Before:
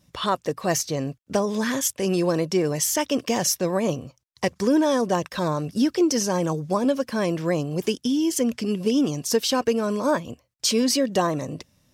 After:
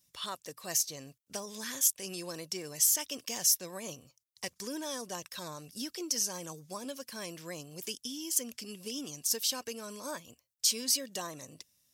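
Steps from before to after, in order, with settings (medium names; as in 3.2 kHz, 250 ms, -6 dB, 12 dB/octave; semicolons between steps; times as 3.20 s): pre-emphasis filter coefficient 0.9; trim -1.5 dB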